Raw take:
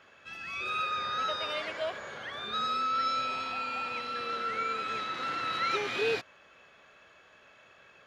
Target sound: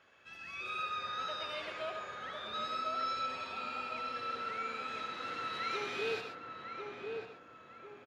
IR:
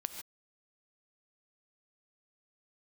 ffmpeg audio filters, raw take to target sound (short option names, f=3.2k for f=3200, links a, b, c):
-filter_complex "[0:a]asplit=2[a][b];[b]adelay=1048,lowpass=f=1.2k:p=1,volume=-3.5dB,asplit=2[c][d];[d]adelay=1048,lowpass=f=1.2k:p=1,volume=0.49,asplit=2[e][f];[f]adelay=1048,lowpass=f=1.2k:p=1,volume=0.49,asplit=2[g][h];[h]adelay=1048,lowpass=f=1.2k:p=1,volume=0.49,asplit=2[i][j];[j]adelay=1048,lowpass=f=1.2k:p=1,volume=0.49,asplit=2[k][l];[l]adelay=1048,lowpass=f=1.2k:p=1,volume=0.49[m];[a][c][e][g][i][k][m]amix=inputs=7:normalize=0[n];[1:a]atrim=start_sample=2205,asetrate=48510,aresample=44100[o];[n][o]afir=irnorm=-1:irlink=0,volume=-5dB"